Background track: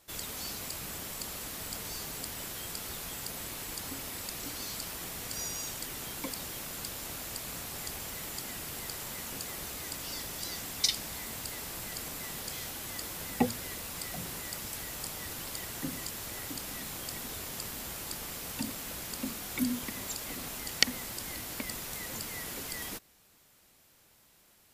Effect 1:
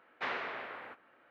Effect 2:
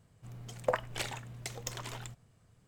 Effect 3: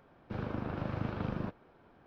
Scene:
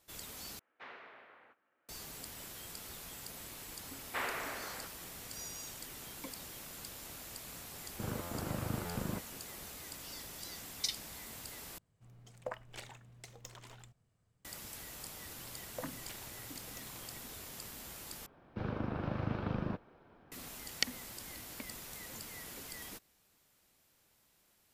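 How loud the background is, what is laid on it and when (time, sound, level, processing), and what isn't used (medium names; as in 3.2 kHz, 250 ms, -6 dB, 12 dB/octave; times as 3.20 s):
background track -8 dB
0.59 s: replace with 1 -14.5 dB
3.93 s: add 1 -1 dB
7.69 s: add 3 -2 dB + buffer glitch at 0.52/1.16 s
11.78 s: replace with 2 -11.5 dB
15.10 s: add 2 -14.5 dB
18.26 s: replace with 3 -0.5 dB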